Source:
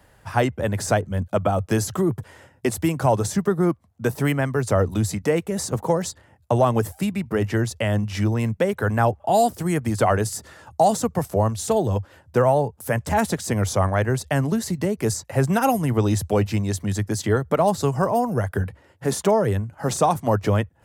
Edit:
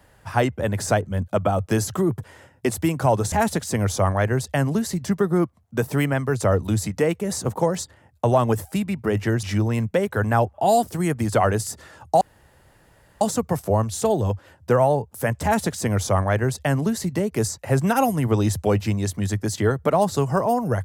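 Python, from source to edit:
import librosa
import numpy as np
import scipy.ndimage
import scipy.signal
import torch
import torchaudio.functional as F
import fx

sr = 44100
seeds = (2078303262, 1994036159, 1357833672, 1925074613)

y = fx.edit(x, sr, fx.cut(start_s=7.7, length_s=0.39),
    fx.insert_room_tone(at_s=10.87, length_s=1.0),
    fx.duplicate(start_s=13.09, length_s=1.73, to_s=3.32), tone=tone)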